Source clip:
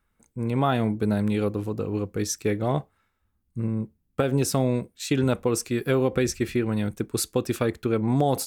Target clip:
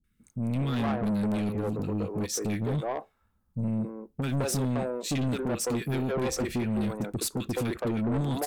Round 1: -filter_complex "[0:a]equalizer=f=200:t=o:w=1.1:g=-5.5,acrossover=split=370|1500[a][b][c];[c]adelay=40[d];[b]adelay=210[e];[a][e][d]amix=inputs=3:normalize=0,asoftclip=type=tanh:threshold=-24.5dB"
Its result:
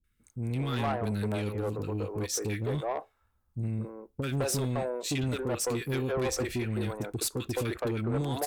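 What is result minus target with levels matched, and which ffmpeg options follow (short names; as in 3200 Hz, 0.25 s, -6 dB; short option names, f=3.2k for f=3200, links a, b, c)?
250 Hz band -3.0 dB
-filter_complex "[0:a]equalizer=f=200:t=o:w=1.1:g=5,acrossover=split=370|1500[a][b][c];[c]adelay=40[d];[b]adelay=210[e];[a][e][d]amix=inputs=3:normalize=0,asoftclip=type=tanh:threshold=-24.5dB"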